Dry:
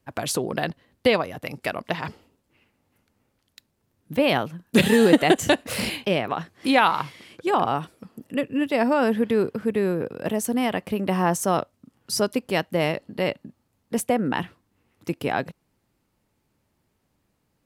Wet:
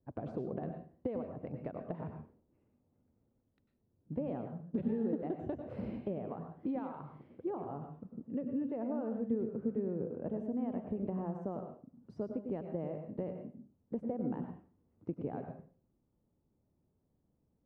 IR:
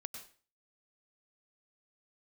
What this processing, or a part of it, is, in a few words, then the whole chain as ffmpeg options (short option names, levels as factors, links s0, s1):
television next door: -filter_complex "[0:a]acompressor=threshold=0.0447:ratio=6,lowpass=550[s0];[1:a]atrim=start_sample=2205[s1];[s0][s1]afir=irnorm=-1:irlink=0,volume=0.841"